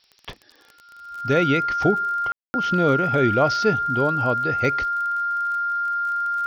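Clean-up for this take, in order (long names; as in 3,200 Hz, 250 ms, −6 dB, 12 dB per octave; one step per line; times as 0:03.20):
click removal
notch filter 1,400 Hz, Q 30
ambience match 0:02.32–0:02.54
broadband denoise 12 dB, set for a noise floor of −55 dBFS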